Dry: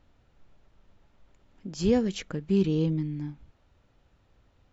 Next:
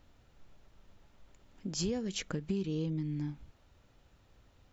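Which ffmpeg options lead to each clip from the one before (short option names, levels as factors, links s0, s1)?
-af "highshelf=f=4800:g=8,acompressor=threshold=0.0282:ratio=8"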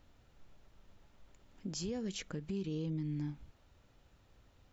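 -af "alimiter=level_in=1.88:limit=0.0631:level=0:latency=1:release=63,volume=0.531,volume=0.841"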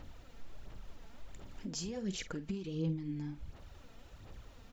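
-filter_complex "[0:a]acompressor=threshold=0.00224:ratio=2,aphaser=in_gain=1:out_gain=1:delay=4.5:decay=0.51:speed=1.4:type=sinusoidal,asplit=2[s0][s1];[s1]adelay=48,volume=0.211[s2];[s0][s2]amix=inputs=2:normalize=0,volume=2.66"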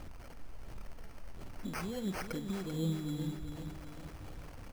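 -af "aeval=exprs='val(0)+0.5*0.00376*sgn(val(0))':c=same,acrusher=samples=12:mix=1:aa=0.000001,aecho=1:1:390|780|1170|1560|1950|2340:0.376|0.188|0.094|0.047|0.0235|0.0117"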